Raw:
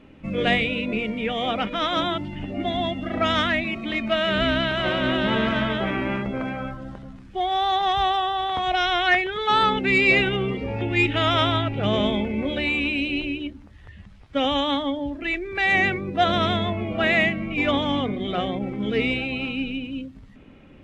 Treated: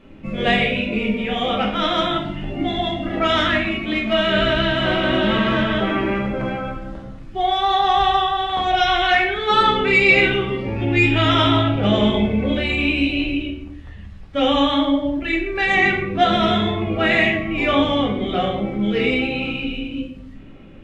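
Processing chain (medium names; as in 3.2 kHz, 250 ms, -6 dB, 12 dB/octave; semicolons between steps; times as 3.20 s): simulated room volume 130 m³, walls mixed, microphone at 1.1 m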